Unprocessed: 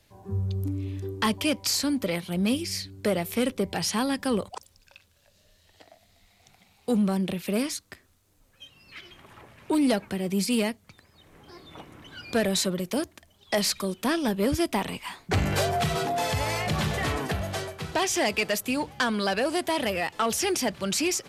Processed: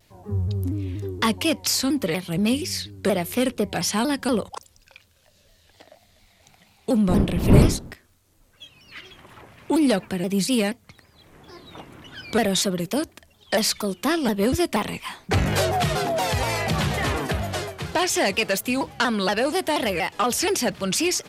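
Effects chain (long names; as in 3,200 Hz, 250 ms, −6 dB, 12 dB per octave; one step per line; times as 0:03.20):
0:07.08–0:07.91: wind on the microphone 220 Hz −27 dBFS
pitch modulation by a square or saw wave saw down 4.2 Hz, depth 160 cents
level +3.5 dB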